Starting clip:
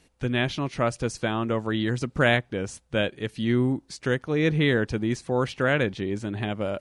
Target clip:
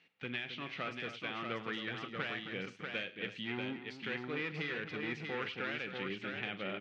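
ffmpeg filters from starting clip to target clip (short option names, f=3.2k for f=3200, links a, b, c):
-af "asoftclip=type=hard:threshold=-21dB,aderivative,acompressor=threshold=-42dB:ratio=6,highpass=110,equalizer=f=110:t=q:w=4:g=7,equalizer=f=180:t=q:w=4:g=10,equalizer=f=610:t=q:w=4:g=-6,equalizer=f=980:t=q:w=4:g=-7,equalizer=f=1.6k:t=q:w=4:g=-5,lowpass=f=2.6k:w=0.5412,lowpass=f=2.6k:w=1.3066,aecho=1:1:42|105|266|638:0.188|0.126|0.282|0.596,volume=12dB"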